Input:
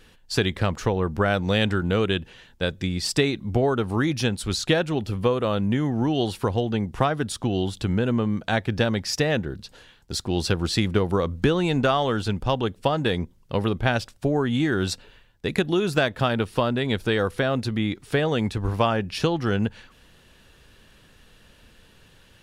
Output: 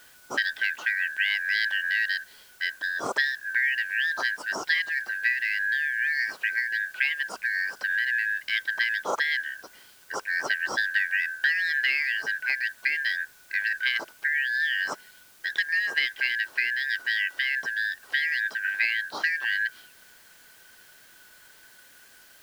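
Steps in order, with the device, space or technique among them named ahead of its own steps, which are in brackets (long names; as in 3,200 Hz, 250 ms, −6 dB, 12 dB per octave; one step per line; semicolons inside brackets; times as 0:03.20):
high-shelf EQ 4,800 Hz +11.5 dB
split-band scrambled radio (band-splitting scrambler in four parts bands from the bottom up 4123; band-pass filter 360–3,100 Hz; white noise bed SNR 27 dB)
level −3.5 dB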